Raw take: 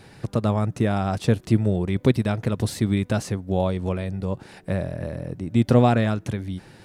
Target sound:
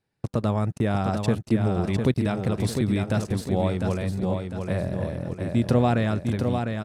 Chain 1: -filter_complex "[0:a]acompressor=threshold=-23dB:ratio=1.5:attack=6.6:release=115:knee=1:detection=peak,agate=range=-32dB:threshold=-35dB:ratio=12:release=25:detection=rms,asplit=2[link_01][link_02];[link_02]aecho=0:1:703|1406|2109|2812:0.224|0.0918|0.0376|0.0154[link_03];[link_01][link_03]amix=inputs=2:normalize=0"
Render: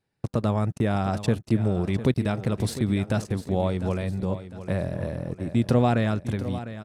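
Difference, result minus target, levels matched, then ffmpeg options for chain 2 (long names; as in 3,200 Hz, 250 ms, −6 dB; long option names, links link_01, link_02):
echo-to-direct −7.5 dB
-filter_complex "[0:a]acompressor=threshold=-23dB:ratio=1.5:attack=6.6:release=115:knee=1:detection=peak,agate=range=-32dB:threshold=-35dB:ratio=12:release=25:detection=rms,asplit=2[link_01][link_02];[link_02]aecho=0:1:703|1406|2109|2812|3515:0.531|0.218|0.0892|0.0366|0.015[link_03];[link_01][link_03]amix=inputs=2:normalize=0"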